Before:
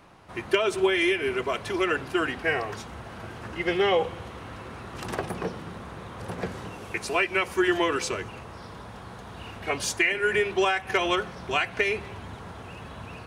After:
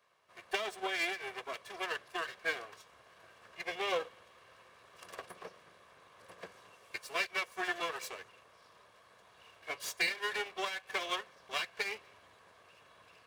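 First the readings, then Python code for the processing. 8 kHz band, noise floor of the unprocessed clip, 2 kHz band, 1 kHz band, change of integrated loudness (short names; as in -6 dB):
-10.0 dB, -43 dBFS, -10.0 dB, -11.0 dB, -10.5 dB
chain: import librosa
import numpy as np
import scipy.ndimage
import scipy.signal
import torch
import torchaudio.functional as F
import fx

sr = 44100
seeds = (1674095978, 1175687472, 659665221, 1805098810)

y = fx.lower_of_two(x, sr, delay_ms=1.8)
y = fx.highpass(y, sr, hz=720.0, slope=6)
y = fx.upward_expand(y, sr, threshold_db=-42.0, expansion=1.5)
y = y * librosa.db_to_amplitude(-5.0)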